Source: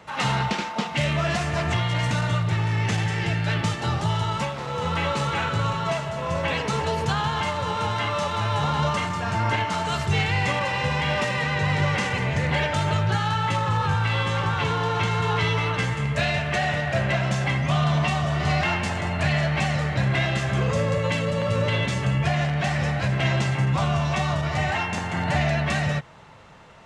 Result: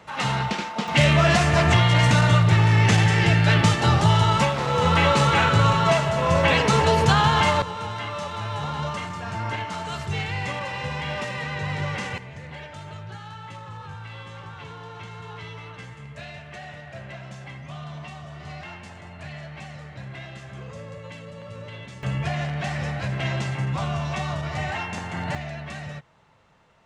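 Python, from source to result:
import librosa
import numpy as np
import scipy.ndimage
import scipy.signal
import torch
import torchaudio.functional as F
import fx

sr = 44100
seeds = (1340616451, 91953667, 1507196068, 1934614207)

y = fx.gain(x, sr, db=fx.steps((0.0, -1.0), (0.88, 6.5), (7.62, -5.5), (12.18, -15.5), (22.03, -4.0), (25.35, -11.5)))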